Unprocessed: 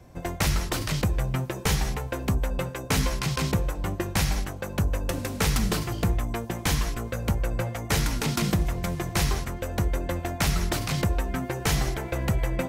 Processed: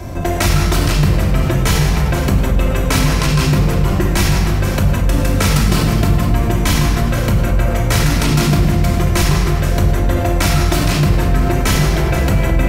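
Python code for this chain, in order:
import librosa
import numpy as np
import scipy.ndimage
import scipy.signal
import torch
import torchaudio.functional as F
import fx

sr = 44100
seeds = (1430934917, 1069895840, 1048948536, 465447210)

p1 = x + fx.echo_single(x, sr, ms=482, db=-15.0, dry=0)
p2 = fx.room_shoebox(p1, sr, seeds[0], volume_m3=2200.0, walls='mixed', distance_m=2.9)
p3 = fx.env_flatten(p2, sr, amount_pct=50)
y = p3 * 10.0 ** (3.0 / 20.0)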